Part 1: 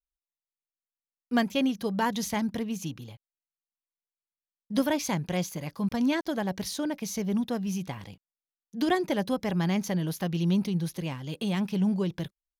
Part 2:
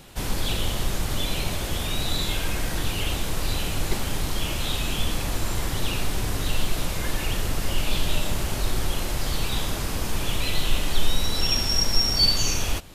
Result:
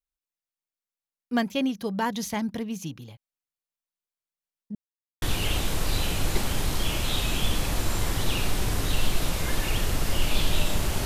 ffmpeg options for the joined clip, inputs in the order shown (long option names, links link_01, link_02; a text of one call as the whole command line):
ffmpeg -i cue0.wav -i cue1.wav -filter_complex "[0:a]apad=whole_dur=11.05,atrim=end=11.05,asplit=2[link_01][link_02];[link_01]atrim=end=4.75,asetpts=PTS-STARTPTS,afade=type=out:start_time=4.746:duration=0.004:curve=hsin[link_03];[link_02]atrim=start=4.75:end=5.22,asetpts=PTS-STARTPTS,volume=0[link_04];[1:a]atrim=start=2.78:end=8.61,asetpts=PTS-STARTPTS,afade=type=in:duration=0.004:curve=hsin[link_05];[link_03][link_04][link_05]concat=n=3:v=0:a=1" out.wav